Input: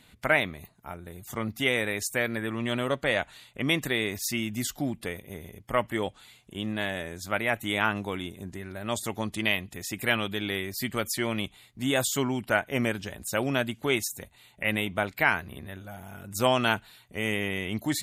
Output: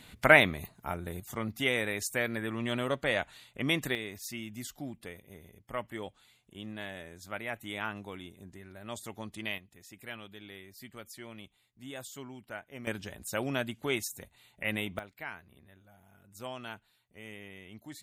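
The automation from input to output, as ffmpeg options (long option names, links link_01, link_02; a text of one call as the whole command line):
ffmpeg -i in.wav -af "asetnsamples=nb_out_samples=441:pad=0,asendcmd='1.2 volume volume -3.5dB;3.95 volume volume -10.5dB;9.58 volume volume -17.5dB;12.87 volume volume -5.5dB;14.99 volume volume -18dB',volume=4dB" out.wav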